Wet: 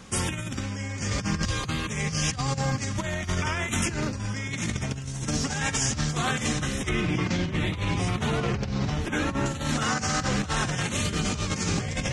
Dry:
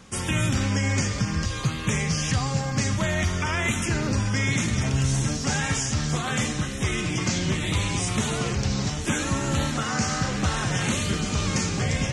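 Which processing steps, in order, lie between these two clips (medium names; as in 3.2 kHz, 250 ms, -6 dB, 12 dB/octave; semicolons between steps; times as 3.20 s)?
6.89–9.46 s: peaking EQ 8.1 kHz -15 dB 1.5 oct; compressor with a negative ratio -27 dBFS, ratio -0.5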